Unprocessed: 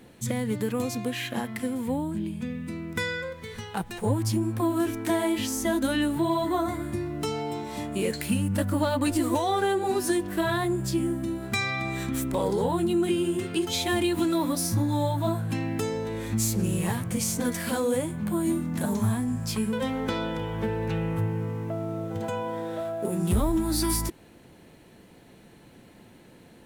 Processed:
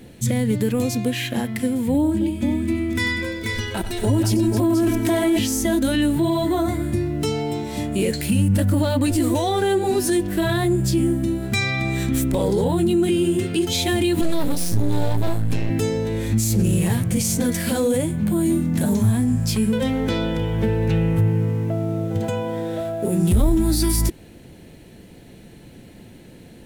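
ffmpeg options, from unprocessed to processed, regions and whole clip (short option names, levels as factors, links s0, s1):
-filter_complex "[0:a]asettb=1/sr,asplit=3[s0][s1][s2];[s0]atrim=end=1.944[s3];[s1]atrim=start=1.94:end=5.39,asetpts=PTS-STARTPTS,afade=t=in:d=0.004:c=qsin,afade=t=out:st=3.446:d=0.004:c=qsin,aecho=1:1:3.1:0.76,atrim=end_sample=152145,aecho=1:1:94|270|486:0.251|0.237|0.501,atrim=end_sample=152145[s4];[s2]atrim=start=5.386[s5];[s3][s4]acrossfade=d=0.004:c1=hsin:c2=qsin[s6];[s6][s5]acrossfade=d=0.004:c1=qsin:c2=hsin,asettb=1/sr,asplit=3[s7][s8][s9];[s7]atrim=end=14.214[s10];[s8]atrim=start=14.21:end=15.7,asetpts=PTS-STARTPTS,afade=t=in:d=0.004:c=qsin,afade=t=out:st=1.486:d=0.004:c=qsin,aeval=exprs='max(val(0),0)':c=same,asplit=2[s11][s12];[s12]adelay=17,volume=0.282[s13];[s11][s13]amix=inputs=2:normalize=0,atrim=end_sample=65709[s14];[s9]atrim=start=15.696[s15];[s10][s14]acrossfade=d=0.004:c1=hsin:c2=qsin[s16];[s16][s15]acrossfade=d=0.004:c1=qsin:c2=hsin,equalizer=f=1100:w=1.4:g=-8,alimiter=limit=0.1:level=0:latency=1:release=13,lowshelf=f=120:g=7,volume=2.24"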